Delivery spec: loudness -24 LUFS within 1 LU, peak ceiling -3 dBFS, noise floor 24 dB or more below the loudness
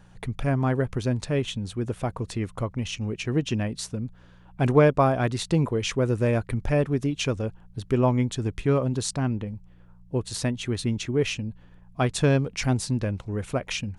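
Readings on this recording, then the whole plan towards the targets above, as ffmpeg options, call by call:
hum 60 Hz; highest harmonic 180 Hz; hum level -52 dBFS; loudness -26.0 LUFS; peak level -7.0 dBFS; loudness target -24.0 LUFS
-> -af "bandreject=f=60:t=h:w=4,bandreject=f=120:t=h:w=4,bandreject=f=180:t=h:w=4"
-af "volume=1.26"

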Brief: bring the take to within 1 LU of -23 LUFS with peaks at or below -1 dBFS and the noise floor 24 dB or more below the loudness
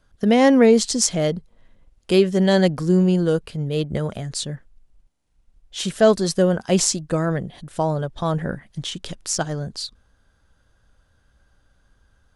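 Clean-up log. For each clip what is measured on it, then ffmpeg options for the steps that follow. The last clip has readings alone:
loudness -20.5 LUFS; peak level -2.5 dBFS; loudness target -23.0 LUFS
-> -af "volume=0.75"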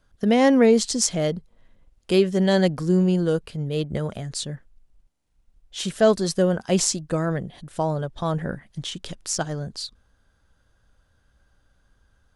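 loudness -23.0 LUFS; peak level -5.0 dBFS; noise floor -66 dBFS

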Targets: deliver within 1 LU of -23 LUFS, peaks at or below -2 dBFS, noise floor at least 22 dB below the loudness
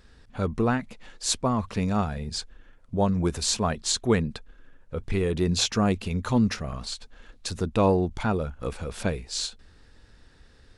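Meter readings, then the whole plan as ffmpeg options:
loudness -27.0 LUFS; peak level -9.5 dBFS; loudness target -23.0 LUFS
-> -af "volume=1.58"

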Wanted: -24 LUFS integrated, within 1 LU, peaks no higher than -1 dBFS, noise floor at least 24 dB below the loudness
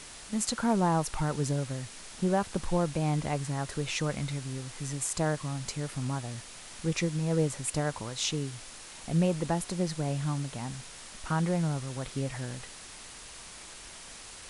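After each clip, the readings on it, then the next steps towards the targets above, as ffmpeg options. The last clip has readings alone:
noise floor -47 dBFS; noise floor target -56 dBFS; loudness -31.5 LUFS; peak level -13.5 dBFS; loudness target -24.0 LUFS
-> -af "afftdn=nr=9:nf=-47"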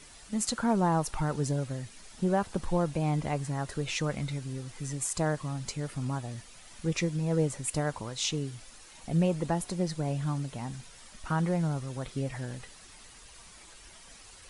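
noise floor -52 dBFS; noise floor target -56 dBFS
-> -af "afftdn=nr=6:nf=-52"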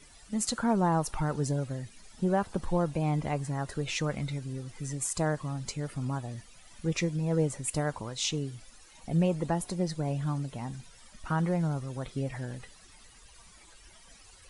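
noise floor -55 dBFS; noise floor target -56 dBFS
-> -af "afftdn=nr=6:nf=-55"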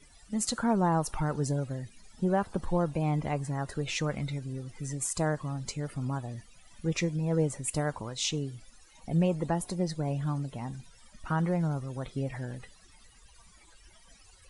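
noise floor -58 dBFS; loudness -31.5 LUFS; peak level -14.0 dBFS; loudness target -24.0 LUFS
-> -af "volume=2.37"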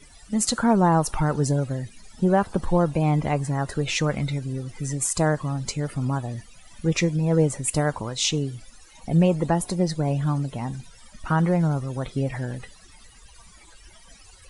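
loudness -24.0 LUFS; peak level -6.5 dBFS; noise floor -50 dBFS

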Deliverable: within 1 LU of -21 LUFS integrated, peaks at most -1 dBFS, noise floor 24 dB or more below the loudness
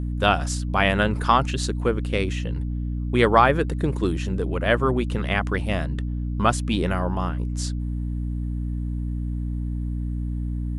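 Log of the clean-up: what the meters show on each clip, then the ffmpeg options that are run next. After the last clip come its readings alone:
hum 60 Hz; highest harmonic 300 Hz; hum level -24 dBFS; loudness -24.0 LUFS; peak level -2.0 dBFS; loudness target -21.0 LUFS
-> -af "bandreject=f=60:t=h:w=6,bandreject=f=120:t=h:w=6,bandreject=f=180:t=h:w=6,bandreject=f=240:t=h:w=6,bandreject=f=300:t=h:w=6"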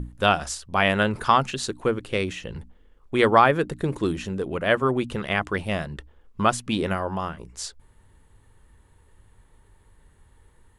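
hum not found; loudness -24.0 LUFS; peak level -2.5 dBFS; loudness target -21.0 LUFS
-> -af "volume=1.41,alimiter=limit=0.891:level=0:latency=1"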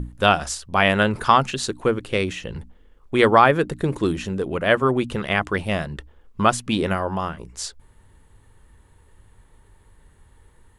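loudness -21.0 LUFS; peak level -1.0 dBFS; noise floor -55 dBFS

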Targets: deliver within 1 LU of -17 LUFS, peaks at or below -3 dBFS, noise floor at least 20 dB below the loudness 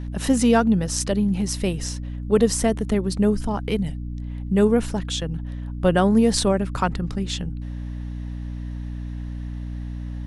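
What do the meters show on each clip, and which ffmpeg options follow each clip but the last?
hum 60 Hz; highest harmonic 300 Hz; hum level -28 dBFS; loudness -23.5 LUFS; peak level -4.0 dBFS; loudness target -17.0 LUFS
-> -af "bandreject=f=60:t=h:w=4,bandreject=f=120:t=h:w=4,bandreject=f=180:t=h:w=4,bandreject=f=240:t=h:w=4,bandreject=f=300:t=h:w=4"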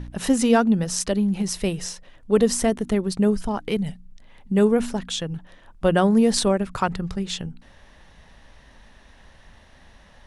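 hum not found; loudness -22.5 LUFS; peak level -3.5 dBFS; loudness target -17.0 LUFS
-> -af "volume=1.88,alimiter=limit=0.708:level=0:latency=1"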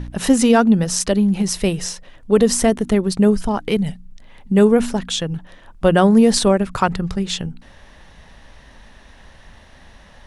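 loudness -17.0 LUFS; peak level -3.0 dBFS; noise floor -46 dBFS

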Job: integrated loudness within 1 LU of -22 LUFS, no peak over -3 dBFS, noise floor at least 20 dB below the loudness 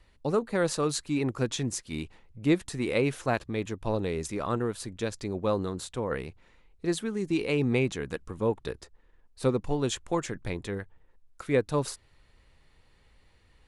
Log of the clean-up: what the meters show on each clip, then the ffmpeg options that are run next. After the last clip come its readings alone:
loudness -30.5 LUFS; peak level -12.5 dBFS; loudness target -22.0 LUFS
-> -af "volume=2.66"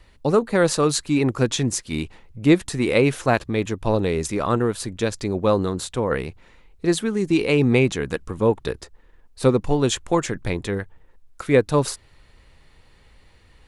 loudness -22.0 LUFS; peak level -4.0 dBFS; noise floor -54 dBFS

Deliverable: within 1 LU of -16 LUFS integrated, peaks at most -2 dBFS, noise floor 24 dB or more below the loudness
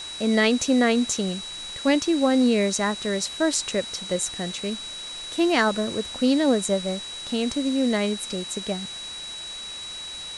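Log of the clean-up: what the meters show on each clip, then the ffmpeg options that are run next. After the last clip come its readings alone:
steady tone 3.9 kHz; tone level -34 dBFS; noise floor -36 dBFS; noise floor target -48 dBFS; loudness -24.0 LUFS; peak level -7.5 dBFS; loudness target -16.0 LUFS
-> -af "bandreject=f=3900:w=30"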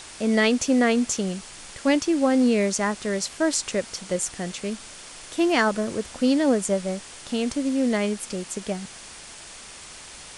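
steady tone not found; noise floor -43 dBFS; noise floor target -48 dBFS
-> -af "afftdn=nr=6:nf=-43"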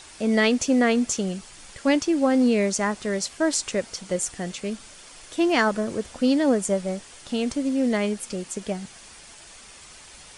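noise floor -47 dBFS; noise floor target -48 dBFS
-> -af "afftdn=nr=6:nf=-47"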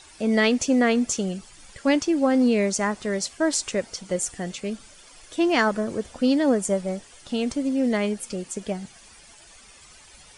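noise floor -50 dBFS; loudness -24.0 LUFS; peak level -8.0 dBFS; loudness target -16.0 LUFS
-> -af "volume=2.51,alimiter=limit=0.794:level=0:latency=1"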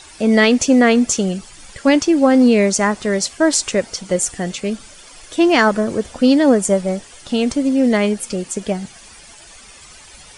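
loudness -16.0 LUFS; peak level -2.0 dBFS; noise floor -42 dBFS

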